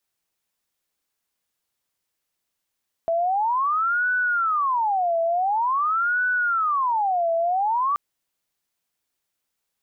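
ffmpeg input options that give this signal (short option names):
-f lavfi -i "aevalsrc='0.112*sin(2*PI*(1077*t-413/(2*PI*0.47)*sin(2*PI*0.47*t)))':d=4.88:s=44100"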